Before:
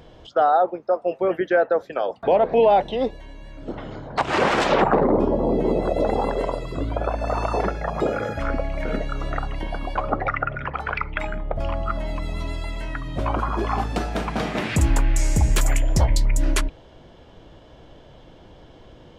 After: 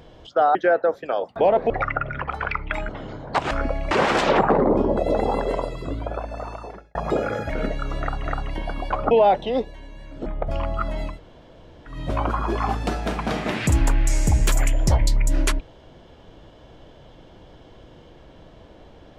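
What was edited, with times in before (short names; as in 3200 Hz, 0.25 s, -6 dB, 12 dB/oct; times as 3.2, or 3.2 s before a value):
0.55–1.42 cut
2.57–3.72 swap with 10.16–11.35
5.4–5.87 cut
6.49–7.85 fade out
8.4–8.8 move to 4.34
9.3–9.55 loop, 2 plays
12.21–13.01 room tone, crossfade 0.16 s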